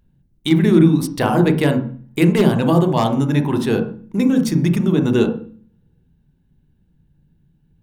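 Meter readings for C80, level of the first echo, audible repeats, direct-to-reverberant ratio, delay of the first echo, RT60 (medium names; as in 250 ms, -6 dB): 14.0 dB, no echo, no echo, 5.5 dB, no echo, 0.45 s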